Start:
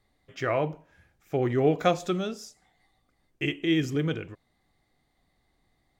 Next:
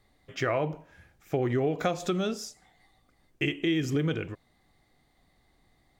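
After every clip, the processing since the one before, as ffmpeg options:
ffmpeg -i in.wav -filter_complex "[0:a]asplit=2[link_01][link_02];[link_02]alimiter=limit=-21dB:level=0:latency=1:release=191,volume=0dB[link_03];[link_01][link_03]amix=inputs=2:normalize=0,acompressor=threshold=-22dB:ratio=6,volume=-1.5dB" out.wav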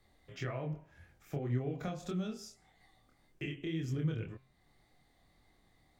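ffmpeg -i in.wav -filter_complex "[0:a]acrossover=split=190[link_01][link_02];[link_02]acompressor=threshold=-59dB:ratio=1.5[link_03];[link_01][link_03]amix=inputs=2:normalize=0,flanger=delay=22.5:depth=4.9:speed=1.8,bandreject=frequency=132.6:width_type=h:width=4,bandreject=frequency=265.2:width_type=h:width=4,bandreject=frequency=397.8:width_type=h:width=4,bandreject=frequency=530.4:width_type=h:width=4,bandreject=frequency=663:width_type=h:width=4,bandreject=frequency=795.6:width_type=h:width=4,bandreject=frequency=928.2:width_type=h:width=4,bandreject=frequency=1060.8:width_type=h:width=4,bandreject=frequency=1193.4:width_type=h:width=4,bandreject=frequency=1326:width_type=h:width=4,bandreject=frequency=1458.6:width_type=h:width=4,bandreject=frequency=1591.2:width_type=h:width=4,bandreject=frequency=1723.8:width_type=h:width=4,bandreject=frequency=1856.4:width_type=h:width=4,bandreject=frequency=1989:width_type=h:width=4,bandreject=frequency=2121.6:width_type=h:width=4,bandreject=frequency=2254.2:width_type=h:width=4,bandreject=frequency=2386.8:width_type=h:width=4,bandreject=frequency=2519.4:width_type=h:width=4,bandreject=frequency=2652:width_type=h:width=4,bandreject=frequency=2784.6:width_type=h:width=4,bandreject=frequency=2917.2:width_type=h:width=4,bandreject=frequency=3049.8:width_type=h:width=4,bandreject=frequency=3182.4:width_type=h:width=4,bandreject=frequency=3315:width_type=h:width=4,bandreject=frequency=3447.6:width_type=h:width=4,volume=1dB" out.wav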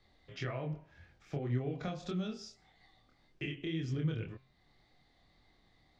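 ffmpeg -i in.wav -af "lowpass=frequency=4600:width_type=q:width=1.5" out.wav

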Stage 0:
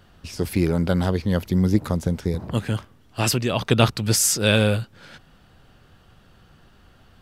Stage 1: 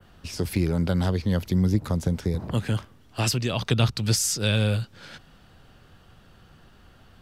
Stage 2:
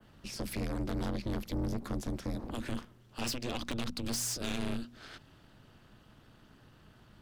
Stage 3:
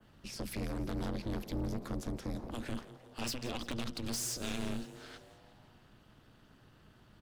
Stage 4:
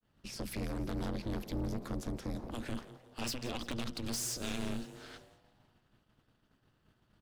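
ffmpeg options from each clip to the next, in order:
ffmpeg -i in.wav -filter_complex "[0:a]adynamicequalizer=threshold=0.0126:dfrequency=4900:dqfactor=0.78:tfrequency=4900:tqfactor=0.78:attack=5:release=100:ratio=0.375:range=3:mode=boostabove:tftype=bell,acrossover=split=160[link_01][link_02];[link_02]acompressor=threshold=-27dB:ratio=2.5[link_03];[link_01][link_03]amix=inputs=2:normalize=0" out.wav
ffmpeg -i in.wav -af "aeval=exprs='(tanh(20*val(0)+0.35)-tanh(0.35))/20':channel_layout=same,bandreject=frequency=60:width_type=h:width=6,bandreject=frequency=120:width_type=h:width=6,aeval=exprs='val(0)*sin(2*PI*120*n/s)':channel_layout=same,volume=-2dB" out.wav
ffmpeg -i in.wav -filter_complex "[0:a]asplit=7[link_01][link_02][link_03][link_04][link_05][link_06][link_07];[link_02]adelay=170,afreqshift=120,volume=-17dB[link_08];[link_03]adelay=340,afreqshift=240,volume=-21.2dB[link_09];[link_04]adelay=510,afreqshift=360,volume=-25.3dB[link_10];[link_05]adelay=680,afreqshift=480,volume=-29.5dB[link_11];[link_06]adelay=850,afreqshift=600,volume=-33.6dB[link_12];[link_07]adelay=1020,afreqshift=720,volume=-37.8dB[link_13];[link_01][link_08][link_09][link_10][link_11][link_12][link_13]amix=inputs=7:normalize=0,volume=-2.5dB" out.wav
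ffmpeg -i in.wav -af "agate=range=-33dB:threshold=-52dB:ratio=3:detection=peak" out.wav

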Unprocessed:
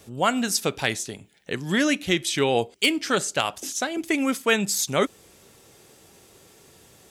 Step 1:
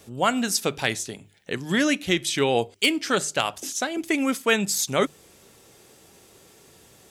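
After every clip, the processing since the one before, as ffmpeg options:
ffmpeg -i in.wav -af "bandreject=frequency=50:width_type=h:width=6,bandreject=frequency=100:width_type=h:width=6,bandreject=frequency=150:width_type=h:width=6" out.wav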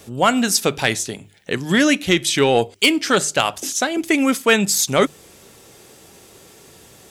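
ffmpeg -i in.wav -af "acontrast=74" out.wav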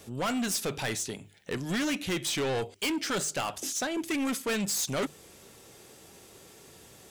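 ffmpeg -i in.wav -af "asoftclip=type=tanh:threshold=-20dB,volume=-6.5dB" out.wav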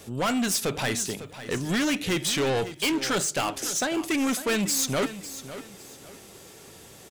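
ffmpeg -i in.wav -af "aecho=1:1:551|1102|1653:0.211|0.0634|0.019,volume=4.5dB" out.wav

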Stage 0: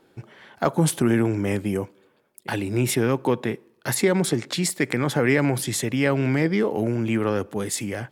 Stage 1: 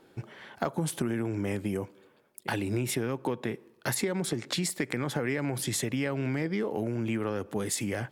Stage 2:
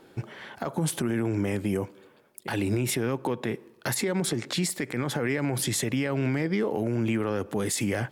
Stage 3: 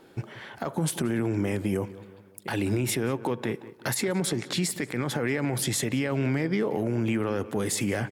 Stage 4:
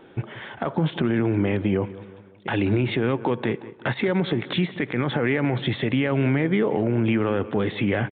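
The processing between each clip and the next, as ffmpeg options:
ffmpeg -i in.wav -af "acompressor=threshold=-27dB:ratio=6" out.wav
ffmpeg -i in.wav -af "alimiter=limit=-23dB:level=0:latency=1:release=53,volume=5dB" out.wav
ffmpeg -i in.wav -filter_complex "[0:a]asplit=2[link_01][link_02];[link_02]adelay=181,lowpass=frequency=3200:poles=1,volume=-17dB,asplit=2[link_03][link_04];[link_04]adelay=181,lowpass=frequency=3200:poles=1,volume=0.5,asplit=2[link_05][link_06];[link_06]adelay=181,lowpass=frequency=3200:poles=1,volume=0.5,asplit=2[link_07][link_08];[link_08]adelay=181,lowpass=frequency=3200:poles=1,volume=0.5[link_09];[link_01][link_03][link_05][link_07][link_09]amix=inputs=5:normalize=0" out.wav
ffmpeg -i in.wav -af "aresample=8000,aresample=44100,volume=5dB" out.wav

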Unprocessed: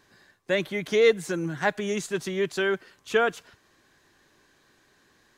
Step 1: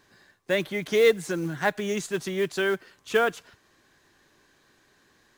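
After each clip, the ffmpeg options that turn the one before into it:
ffmpeg -i in.wav -af "acrusher=bits=6:mode=log:mix=0:aa=0.000001" out.wav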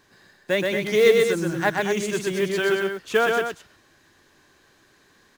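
ffmpeg -i in.wav -af "aecho=1:1:125.4|227.4:0.708|0.398,volume=2dB" out.wav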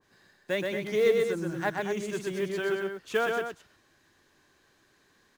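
ffmpeg -i in.wav -af "adynamicequalizer=threshold=0.0178:dfrequency=1700:dqfactor=0.7:tfrequency=1700:tqfactor=0.7:attack=5:release=100:ratio=0.375:range=3.5:mode=cutabove:tftype=highshelf,volume=-7dB" out.wav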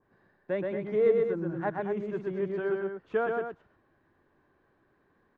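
ffmpeg -i in.wav -af "lowpass=1200" out.wav

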